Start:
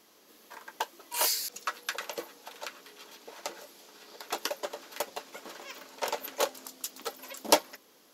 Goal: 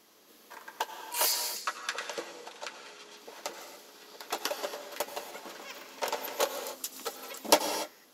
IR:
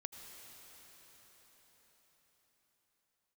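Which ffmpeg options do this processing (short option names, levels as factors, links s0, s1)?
-filter_complex "[0:a]asettb=1/sr,asplit=3[s0][s1][s2];[s0]atrim=end=1.324[s3];[s1]atrim=start=1.32:end=3.17,asetpts=PTS-STARTPTS,afade=t=in:d=0.004:c=qsin,afade=t=out:st=1.846:d=0.004:c=qsin,lowpass=f=10000:w=0.5412,lowpass=f=10000:w=1.3066[s4];[s2]atrim=start=3.166[s5];[s3][s4]acrossfade=d=0.004:c1=hsin:c2=qsin[s6];[s6][s5]acrossfade=d=0.004:c1=qsin:c2=hsin[s7];[1:a]atrim=start_sample=2205,afade=t=out:st=0.35:d=0.01,atrim=end_sample=15876[s8];[s7][s8]afir=irnorm=-1:irlink=0,volume=1.68"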